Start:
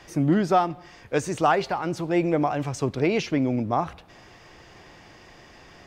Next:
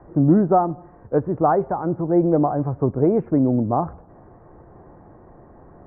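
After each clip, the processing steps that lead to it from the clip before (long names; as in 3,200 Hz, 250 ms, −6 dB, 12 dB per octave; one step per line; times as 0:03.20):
Bessel low-pass filter 760 Hz, order 8
level +6 dB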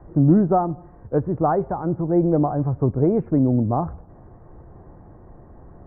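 low-shelf EQ 140 Hz +11 dB
level −3 dB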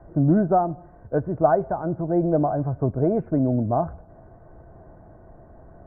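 hollow resonant body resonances 650/1,500 Hz, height 12 dB, ringing for 45 ms
level −3.5 dB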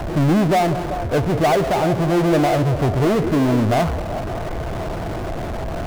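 power curve on the samples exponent 0.35
echo through a band-pass that steps 191 ms, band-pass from 370 Hz, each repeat 0.7 octaves, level −7 dB
level −4.5 dB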